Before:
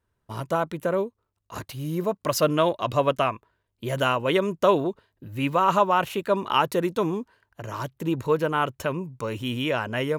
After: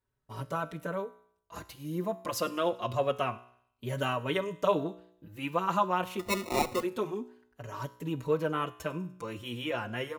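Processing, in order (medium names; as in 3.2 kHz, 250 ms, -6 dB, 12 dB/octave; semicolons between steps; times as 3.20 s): feedback comb 61 Hz, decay 0.66 s, harmonics all, mix 50%; feedback echo behind a high-pass 98 ms, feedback 48%, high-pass 5 kHz, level -19.5 dB; 6.19–6.83 s: sample-rate reducer 1.6 kHz, jitter 0%; endless flanger 4.9 ms +0.27 Hz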